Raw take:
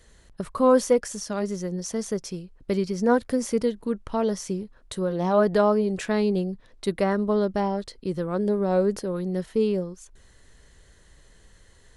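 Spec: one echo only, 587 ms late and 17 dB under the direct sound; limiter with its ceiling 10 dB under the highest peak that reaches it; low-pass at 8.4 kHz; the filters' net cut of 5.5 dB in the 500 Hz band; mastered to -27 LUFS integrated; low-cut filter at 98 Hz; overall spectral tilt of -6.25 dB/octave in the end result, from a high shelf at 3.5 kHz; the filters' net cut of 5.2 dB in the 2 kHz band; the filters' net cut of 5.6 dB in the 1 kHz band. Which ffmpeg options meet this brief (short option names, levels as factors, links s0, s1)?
-af "highpass=98,lowpass=8400,equalizer=f=500:t=o:g=-5.5,equalizer=f=1000:t=o:g=-4,equalizer=f=2000:t=o:g=-4,highshelf=f=3500:g=-3.5,alimiter=limit=0.0794:level=0:latency=1,aecho=1:1:587:0.141,volume=1.78"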